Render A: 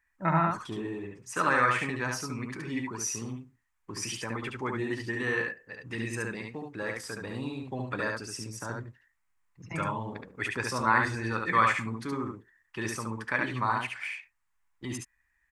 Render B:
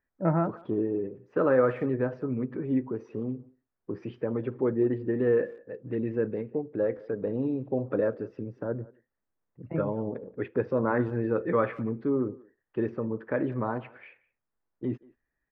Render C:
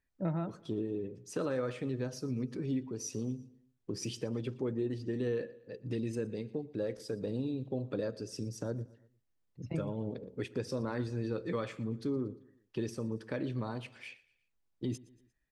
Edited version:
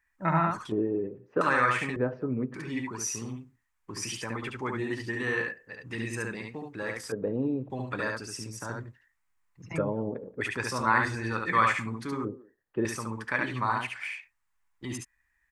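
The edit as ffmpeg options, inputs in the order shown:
-filter_complex "[1:a]asplit=5[s0][s1][s2][s3][s4];[0:a]asplit=6[s5][s6][s7][s8][s9][s10];[s5]atrim=end=0.722[s11];[s0]atrim=start=0.718:end=1.412[s12];[s6]atrim=start=1.408:end=1.962[s13];[s1]atrim=start=1.958:end=2.542[s14];[s7]atrim=start=2.538:end=7.122[s15];[s2]atrim=start=7.118:end=7.702[s16];[s8]atrim=start=7.698:end=9.782[s17];[s3]atrim=start=9.778:end=10.412[s18];[s9]atrim=start=10.408:end=12.252[s19];[s4]atrim=start=12.248:end=12.852[s20];[s10]atrim=start=12.848[s21];[s11][s12]acrossfade=d=0.004:c1=hsin:c2=hsin[s22];[s22][s13]acrossfade=d=0.004:c1=hsin:c2=hsin[s23];[s23][s14]acrossfade=d=0.004:c1=hsin:c2=hsin[s24];[s24][s15]acrossfade=d=0.004:c1=hsin:c2=hsin[s25];[s25][s16]acrossfade=d=0.004:c1=hsin:c2=hsin[s26];[s26][s17]acrossfade=d=0.004:c1=hsin:c2=hsin[s27];[s27][s18]acrossfade=d=0.004:c1=hsin:c2=hsin[s28];[s28][s19]acrossfade=d=0.004:c1=hsin:c2=hsin[s29];[s29][s20]acrossfade=d=0.004:c1=hsin:c2=hsin[s30];[s30][s21]acrossfade=d=0.004:c1=hsin:c2=hsin"

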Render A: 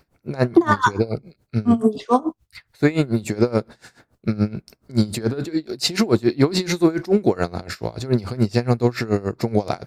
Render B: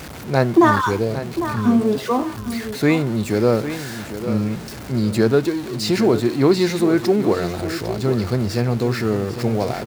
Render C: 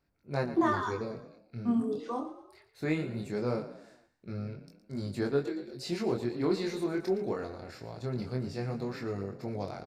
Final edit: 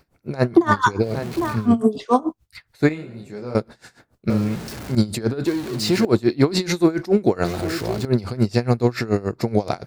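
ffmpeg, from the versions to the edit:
-filter_complex "[1:a]asplit=4[s0][s1][s2][s3];[0:a]asplit=6[s4][s5][s6][s7][s8][s9];[s4]atrim=end=1.22[s10];[s0]atrim=start=0.98:end=1.7[s11];[s5]atrim=start=1.46:end=2.892[s12];[2:a]atrim=start=2.888:end=3.552[s13];[s6]atrim=start=3.548:end=4.302[s14];[s1]atrim=start=4.298:end=4.952[s15];[s7]atrim=start=4.948:end=5.462[s16];[s2]atrim=start=5.458:end=6.052[s17];[s8]atrim=start=6.048:end=7.452[s18];[s3]atrim=start=7.448:end=8.052[s19];[s9]atrim=start=8.048[s20];[s10][s11]acrossfade=d=0.24:c1=tri:c2=tri[s21];[s21][s12]acrossfade=d=0.24:c1=tri:c2=tri[s22];[s22][s13]acrossfade=d=0.004:c1=hsin:c2=hsin[s23];[s23][s14]acrossfade=d=0.004:c1=hsin:c2=hsin[s24];[s24][s15]acrossfade=d=0.004:c1=hsin:c2=hsin[s25];[s25][s16]acrossfade=d=0.004:c1=hsin:c2=hsin[s26];[s26][s17]acrossfade=d=0.004:c1=hsin:c2=hsin[s27];[s27][s18]acrossfade=d=0.004:c1=hsin:c2=hsin[s28];[s28][s19]acrossfade=d=0.004:c1=hsin:c2=hsin[s29];[s29][s20]acrossfade=d=0.004:c1=hsin:c2=hsin"

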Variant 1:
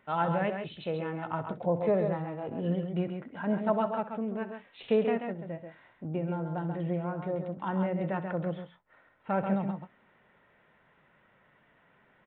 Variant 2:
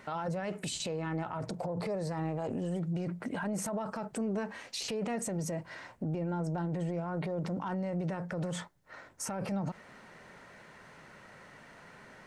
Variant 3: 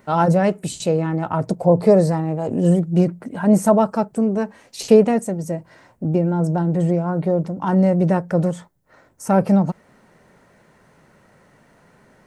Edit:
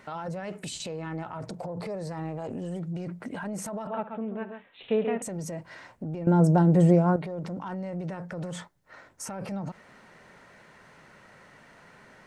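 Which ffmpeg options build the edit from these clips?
-filter_complex "[1:a]asplit=3[s0][s1][s2];[s0]atrim=end=3.872[s3];[0:a]atrim=start=3.868:end=5.222[s4];[s1]atrim=start=5.218:end=6.272[s5];[2:a]atrim=start=6.268:end=7.162[s6];[s2]atrim=start=7.158[s7];[s3][s4]acrossfade=d=0.004:c1=hsin:c2=hsin[s8];[s8][s5]acrossfade=d=0.004:c1=hsin:c2=hsin[s9];[s9][s6]acrossfade=d=0.004:c1=hsin:c2=hsin[s10];[s10][s7]acrossfade=d=0.004:c1=hsin:c2=hsin"

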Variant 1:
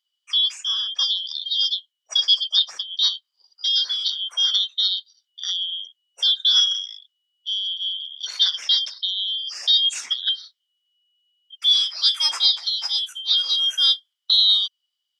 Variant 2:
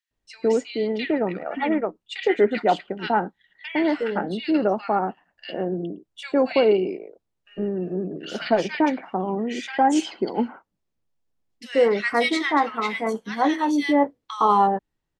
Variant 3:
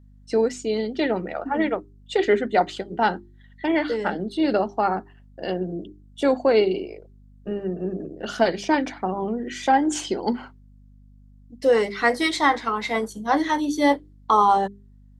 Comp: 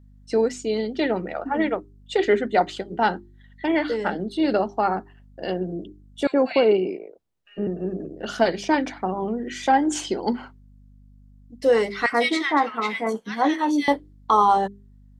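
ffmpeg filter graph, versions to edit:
-filter_complex "[1:a]asplit=2[s0][s1];[2:a]asplit=3[s2][s3][s4];[s2]atrim=end=6.272[s5];[s0]atrim=start=6.268:end=7.672[s6];[s3]atrim=start=7.668:end=12.062[s7];[s1]atrim=start=12.058:end=13.882[s8];[s4]atrim=start=13.878[s9];[s5][s6]acrossfade=d=0.004:c1=hsin:c2=hsin[s10];[s10][s7]acrossfade=d=0.004:c1=hsin:c2=hsin[s11];[s11][s8]acrossfade=d=0.004:c1=hsin:c2=hsin[s12];[s12][s9]acrossfade=d=0.004:c1=hsin:c2=hsin"

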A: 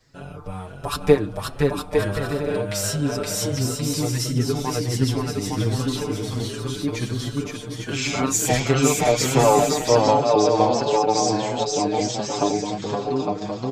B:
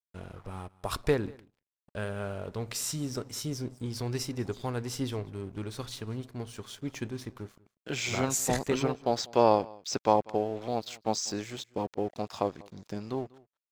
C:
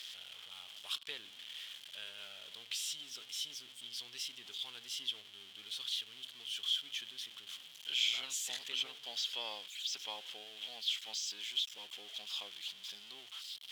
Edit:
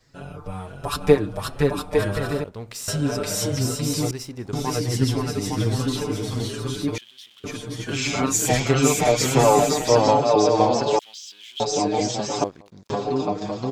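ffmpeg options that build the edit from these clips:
-filter_complex "[1:a]asplit=3[s0][s1][s2];[2:a]asplit=2[s3][s4];[0:a]asplit=6[s5][s6][s7][s8][s9][s10];[s5]atrim=end=2.442[s11];[s0]atrim=start=2.438:end=2.882[s12];[s6]atrim=start=2.878:end=4.112[s13];[s1]atrim=start=4.108:end=4.532[s14];[s7]atrim=start=4.528:end=6.982[s15];[s3]atrim=start=6.978:end=7.442[s16];[s8]atrim=start=7.438:end=10.992[s17];[s4]atrim=start=10.988:end=11.602[s18];[s9]atrim=start=11.598:end=12.442[s19];[s2]atrim=start=12.438:end=12.902[s20];[s10]atrim=start=12.898[s21];[s11][s12]acrossfade=d=0.004:c1=hsin:c2=hsin[s22];[s22][s13]acrossfade=d=0.004:c1=hsin:c2=hsin[s23];[s23][s14]acrossfade=d=0.004:c1=hsin:c2=hsin[s24];[s24][s15]acrossfade=d=0.004:c1=hsin:c2=hsin[s25];[s25][s16]acrossfade=d=0.004:c1=hsin:c2=hsin[s26];[s26][s17]acrossfade=d=0.004:c1=hsin:c2=hsin[s27];[s27][s18]acrossfade=d=0.004:c1=hsin:c2=hsin[s28];[s28][s19]acrossfade=d=0.004:c1=hsin:c2=hsin[s29];[s29][s20]acrossfade=d=0.004:c1=hsin:c2=hsin[s30];[s30][s21]acrossfade=d=0.004:c1=hsin:c2=hsin"

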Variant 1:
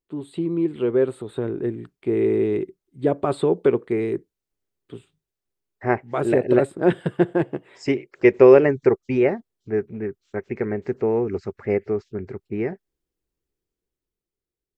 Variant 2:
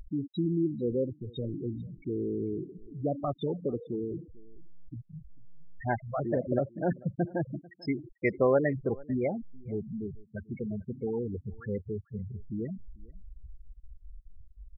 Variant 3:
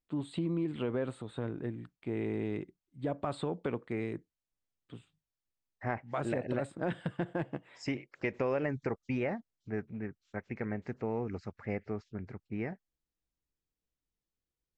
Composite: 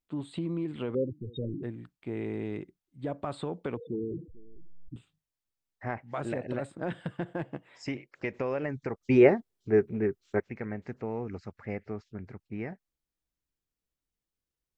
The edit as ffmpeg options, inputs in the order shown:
-filter_complex "[1:a]asplit=2[s0][s1];[2:a]asplit=4[s2][s3][s4][s5];[s2]atrim=end=0.952[s6];[s0]atrim=start=0.948:end=1.632[s7];[s3]atrim=start=1.628:end=3.772[s8];[s1]atrim=start=3.768:end=4.962[s9];[s4]atrim=start=4.958:end=9.012[s10];[0:a]atrim=start=9.008:end=10.402[s11];[s5]atrim=start=10.398[s12];[s6][s7]acrossfade=d=0.004:c1=hsin:c2=hsin[s13];[s13][s8]acrossfade=d=0.004:c1=hsin:c2=hsin[s14];[s14][s9]acrossfade=d=0.004:c1=hsin:c2=hsin[s15];[s15][s10]acrossfade=d=0.004:c1=hsin:c2=hsin[s16];[s16][s11]acrossfade=d=0.004:c1=hsin:c2=hsin[s17];[s17][s12]acrossfade=d=0.004:c1=hsin:c2=hsin"

